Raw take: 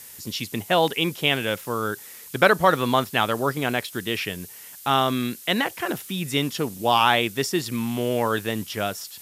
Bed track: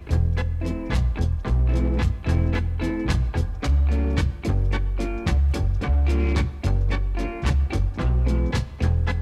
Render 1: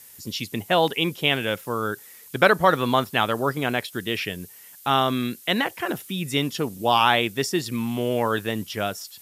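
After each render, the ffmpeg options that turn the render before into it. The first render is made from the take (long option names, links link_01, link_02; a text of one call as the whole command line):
ffmpeg -i in.wav -af "afftdn=noise_reduction=6:noise_floor=-43" out.wav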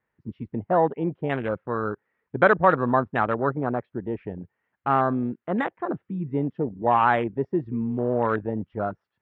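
ffmpeg -i in.wav -af "lowpass=frequency=1800:width=0.5412,lowpass=frequency=1800:width=1.3066,afwtdn=0.0398" out.wav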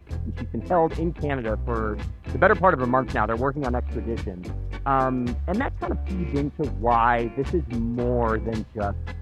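ffmpeg -i in.wav -i bed.wav -filter_complex "[1:a]volume=-10dB[link_01];[0:a][link_01]amix=inputs=2:normalize=0" out.wav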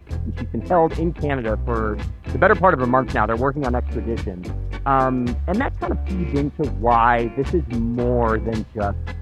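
ffmpeg -i in.wav -af "volume=4dB,alimiter=limit=-2dB:level=0:latency=1" out.wav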